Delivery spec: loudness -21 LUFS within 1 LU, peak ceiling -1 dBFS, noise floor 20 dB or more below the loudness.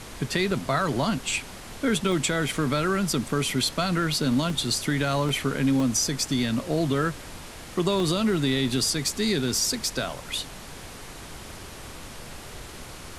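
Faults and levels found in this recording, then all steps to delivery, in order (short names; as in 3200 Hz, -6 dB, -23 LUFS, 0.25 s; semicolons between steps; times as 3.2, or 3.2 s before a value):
dropouts 8; longest dropout 2.0 ms; noise floor -42 dBFS; noise floor target -45 dBFS; loudness -25.0 LUFS; peak -9.0 dBFS; loudness target -21.0 LUFS
-> interpolate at 0.51/2.12/3.5/4.5/5.29/5.8/8/8.69, 2 ms; noise print and reduce 6 dB; gain +4 dB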